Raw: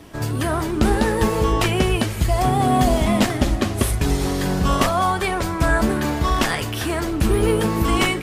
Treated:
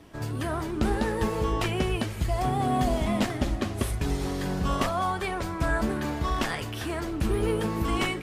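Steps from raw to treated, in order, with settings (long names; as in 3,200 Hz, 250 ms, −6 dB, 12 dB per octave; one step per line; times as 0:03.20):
high-shelf EQ 6,200 Hz −5 dB
level −8 dB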